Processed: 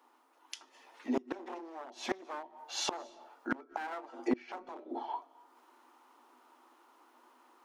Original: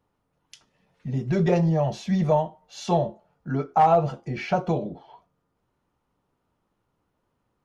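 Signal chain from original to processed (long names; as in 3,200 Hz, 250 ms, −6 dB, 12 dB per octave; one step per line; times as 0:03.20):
wavefolder on the positive side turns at −22.5 dBFS
Chebyshev high-pass with heavy ripple 240 Hz, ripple 9 dB
gate with flip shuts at −30 dBFS, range −26 dB
speech leveller within 3 dB 2 s
on a send at −24 dB: convolution reverb RT60 0.70 s, pre-delay 173 ms
on the sum: one half of a high-frequency compander encoder only
level +11.5 dB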